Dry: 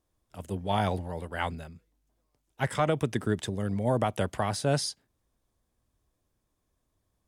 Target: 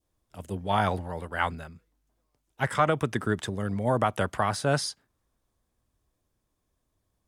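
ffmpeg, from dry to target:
-af "adynamicequalizer=threshold=0.00562:dfrequency=1300:dqfactor=1.3:tfrequency=1300:tqfactor=1.3:attack=5:release=100:ratio=0.375:range=4:mode=boostabove:tftype=bell"

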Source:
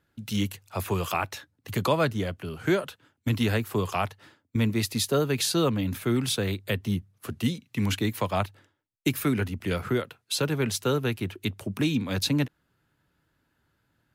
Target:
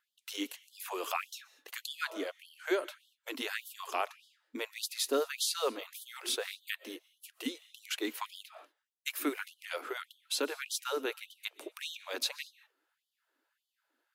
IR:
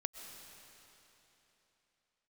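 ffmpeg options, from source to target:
-filter_complex "[0:a]asplit=2[a][b];[1:a]atrim=start_sample=2205,afade=t=out:st=0.29:d=0.01,atrim=end_sample=13230[c];[b][c]afir=irnorm=-1:irlink=0,volume=-4dB[d];[a][d]amix=inputs=2:normalize=0,afftfilt=real='re*gte(b*sr/1024,240*pow(3000/240,0.5+0.5*sin(2*PI*1.7*pts/sr)))':imag='im*gte(b*sr/1024,240*pow(3000/240,0.5+0.5*sin(2*PI*1.7*pts/sr)))':win_size=1024:overlap=0.75,volume=-8.5dB"

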